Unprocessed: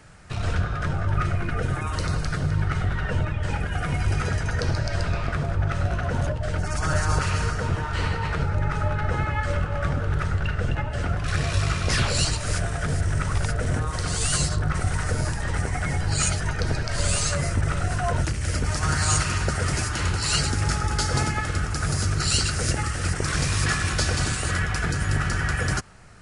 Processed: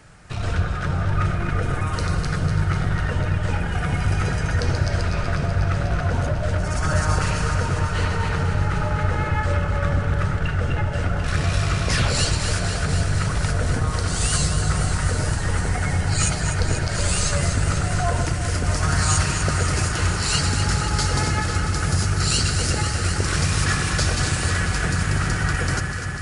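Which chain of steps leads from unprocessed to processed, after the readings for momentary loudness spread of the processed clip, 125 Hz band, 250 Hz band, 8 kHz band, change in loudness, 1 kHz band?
3 LU, +3.0 dB, +3.5 dB, +2.5 dB, +3.0 dB, +2.5 dB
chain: echo with dull and thin repeats by turns 0.124 s, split 1200 Hz, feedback 88%, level -7 dB; gain +1 dB

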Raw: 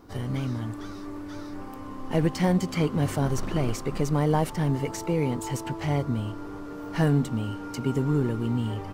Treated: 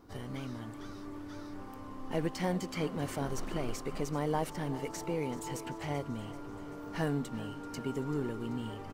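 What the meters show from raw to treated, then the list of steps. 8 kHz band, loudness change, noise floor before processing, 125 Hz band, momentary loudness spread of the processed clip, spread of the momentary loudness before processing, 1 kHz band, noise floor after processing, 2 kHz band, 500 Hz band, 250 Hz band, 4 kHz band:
-6.5 dB, -10.0 dB, -38 dBFS, -13.0 dB, 11 LU, 14 LU, -6.5 dB, -45 dBFS, -6.5 dB, -7.0 dB, -9.5 dB, -6.5 dB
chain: dynamic EQ 110 Hz, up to -8 dB, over -39 dBFS, Q 0.74; on a send: feedback echo 0.386 s, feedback 60%, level -16 dB; on the sum: gain -6.5 dB

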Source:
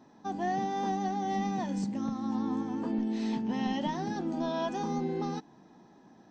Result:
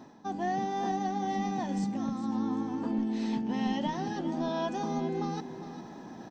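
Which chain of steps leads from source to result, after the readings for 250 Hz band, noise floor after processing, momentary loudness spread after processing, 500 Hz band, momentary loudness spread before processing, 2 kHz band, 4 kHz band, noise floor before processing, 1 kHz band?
+0.5 dB, -46 dBFS, 9 LU, 0.0 dB, 2 LU, +0.5 dB, +0.5 dB, -58 dBFS, +0.5 dB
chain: reverse; upward compressor, threshold -33 dBFS; reverse; echo 0.402 s -11.5 dB

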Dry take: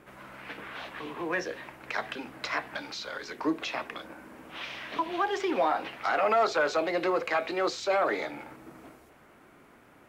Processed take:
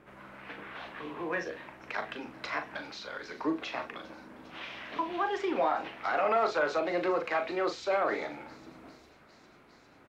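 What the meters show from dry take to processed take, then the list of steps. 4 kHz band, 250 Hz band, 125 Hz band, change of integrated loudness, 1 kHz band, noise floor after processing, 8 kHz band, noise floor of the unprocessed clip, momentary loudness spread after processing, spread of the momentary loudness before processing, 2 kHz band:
-5.0 dB, -2.0 dB, -2.0 dB, -2.5 dB, -2.5 dB, -59 dBFS, n/a, -57 dBFS, 18 LU, 17 LU, -3.0 dB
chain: high shelf 5700 Hz -11.5 dB; doubler 40 ms -8 dB; thin delay 0.403 s, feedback 82%, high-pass 4500 Hz, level -15.5 dB; gain -2.5 dB

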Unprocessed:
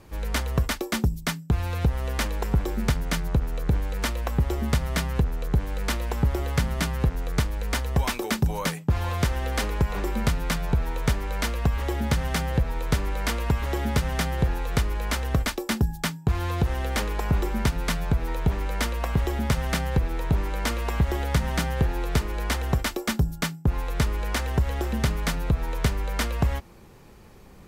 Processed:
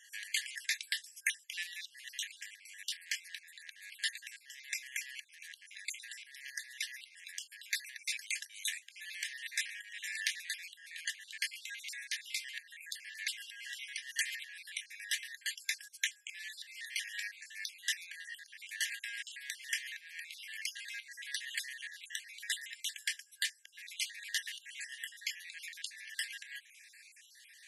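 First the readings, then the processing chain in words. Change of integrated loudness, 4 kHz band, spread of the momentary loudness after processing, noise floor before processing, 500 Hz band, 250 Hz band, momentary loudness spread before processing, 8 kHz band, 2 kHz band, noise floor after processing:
-13.0 dB, -4.5 dB, 11 LU, -44 dBFS, under -40 dB, under -40 dB, 3 LU, -4.5 dB, -5.5 dB, -62 dBFS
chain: random spectral dropouts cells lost 43%; compressor 6:1, threshold -34 dBFS, peak gain reduction 15.5 dB; FFT band-pass 1600–12000 Hz; gain +6.5 dB

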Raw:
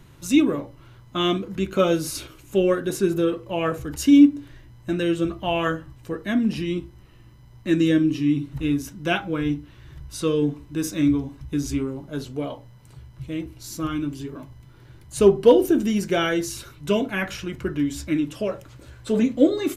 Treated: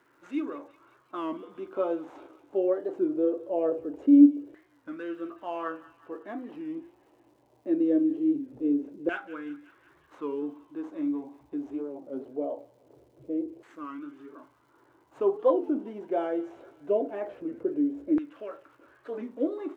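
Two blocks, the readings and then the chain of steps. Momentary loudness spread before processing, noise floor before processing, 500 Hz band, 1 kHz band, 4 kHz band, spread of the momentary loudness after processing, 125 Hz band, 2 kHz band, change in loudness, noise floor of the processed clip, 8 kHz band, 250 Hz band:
15 LU, -49 dBFS, -7.0 dB, -7.5 dB, under -25 dB, 17 LU, under -25 dB, -14.0 dB, -6.0 dB, -64 dBFS, under -35 dB, -6.0 dB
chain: median filter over 9 samples; EQ curve 190 Hz 0 dB, 290 Hz +15 dB, 1200 Hz +1 dB; in parallel at -1 dB: limiter -26.5 dBFS, peak gain reduction 36.5 dB; on the sum: LFO band-pass saw down 0.22 Hz 460–1500 Hz; crackle 340/s -54 dBFS; on a send: thin delay 0.183 s, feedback 60%, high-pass 1600 Hz, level -14 dB; on the sum: record warp 33 1/3 rpm, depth 160 cents; gain -8 dB

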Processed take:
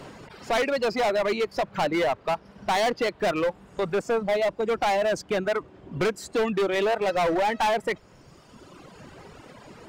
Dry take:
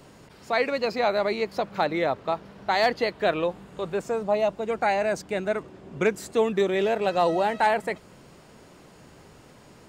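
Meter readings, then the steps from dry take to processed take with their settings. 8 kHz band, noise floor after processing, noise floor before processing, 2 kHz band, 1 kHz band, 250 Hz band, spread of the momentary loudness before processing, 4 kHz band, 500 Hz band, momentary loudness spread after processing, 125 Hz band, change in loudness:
+3.5 dB, -53 dBFS, -52 dBFS, 0.0 dB, -0.5 dB, +0.5 dB, 8 LU, +1.5 dB, 0.0 dB, 7 LU, +0.5 dB, 0.0 dB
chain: reverb removal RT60 1.7 s; LPF 3300 Hz 6 dB/oct; low shelf 350 Hz -4.5 dB; in parallel at 0 dB: compressor, threshold -35 dBFS, peak gain reduction 15.5 dB; on the sum: overloaded stage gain 25 dB; gain +4.5 dB

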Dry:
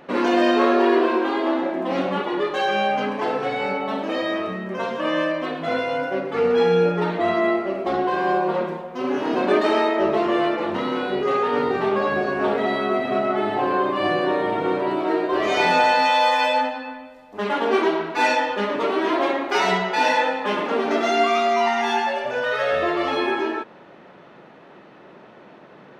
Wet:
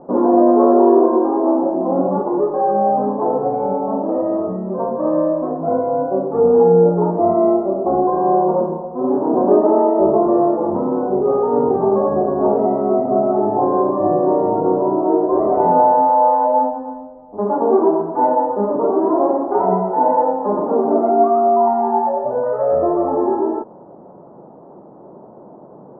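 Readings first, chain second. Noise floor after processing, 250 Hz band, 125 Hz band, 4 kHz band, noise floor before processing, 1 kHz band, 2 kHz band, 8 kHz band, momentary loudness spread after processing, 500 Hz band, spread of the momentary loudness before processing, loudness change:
-41 dBFS, +6.5 dB, +6.5 dB, under -40 dB, -46 dBFS, +4.5 dB, under -20 dB, n/a, 7 LU, +6.5 dB, 8 LU, +5.0 dB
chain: steep low-pass 960 Hz 36 dB/oct; gain +6.5 dB

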